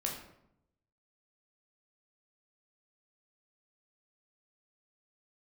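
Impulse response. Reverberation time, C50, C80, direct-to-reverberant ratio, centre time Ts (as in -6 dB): 0.75 s, 5.0 dB, 8.5 dB, -1.0 dB, 35 ms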